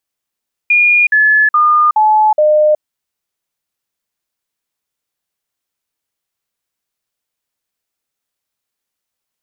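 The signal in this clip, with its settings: stepped sine 2430 Hz down, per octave 2, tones 5, 0.37 s, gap 0.05 s -6.5 dBFS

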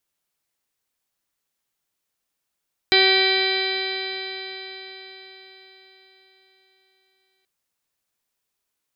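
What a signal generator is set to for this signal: stretched partials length 4.53 s, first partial 380 Hz, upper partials -6/-17/-7.5/-4/0/-18.5/-4.5/-10.5/2.5/-13.5/-8.5 dB, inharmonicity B 0.001, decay 4.81 s, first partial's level -19 dB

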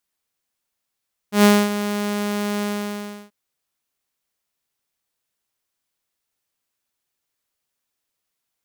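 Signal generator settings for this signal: ADSR saw 206 Hz, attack 0.117 s, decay 0.25 s, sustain -12.5 dB, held 1.31 s, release 0.675 s -6.5 dBFS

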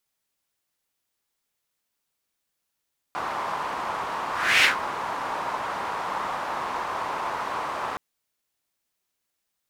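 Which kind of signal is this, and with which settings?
whoosh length 4.82 s, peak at 1.48, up 0.34 s, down 0.15 s, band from 1000 Hz, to 2400 Hz, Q 2.7, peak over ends 13 dB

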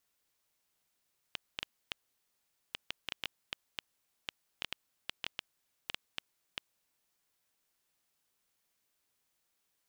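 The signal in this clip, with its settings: random clicks 4.2/s -17.5 dBFS 5.60 s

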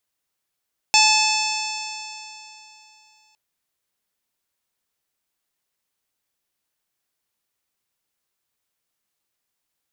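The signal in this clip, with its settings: stretched partials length 2.41 s, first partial 862 Hz, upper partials -16.5/1/-8/-4/0/-6.5/-3.5/-17 dB, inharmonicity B 0.0019, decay 3.07 s, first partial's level -17 dB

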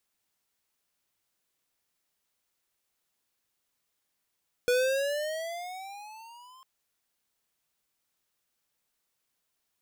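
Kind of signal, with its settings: gliding synth tone square, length 1.95 s, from 486 Hz, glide +13.5 st, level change -30 dB, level -23.5 dB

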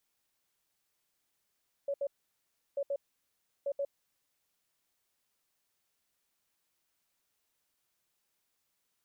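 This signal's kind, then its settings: beep pattern sine 561 Hz, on 0.06 s, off 0.07 s, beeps 2, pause 0.70 s, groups 3, -30 dBFS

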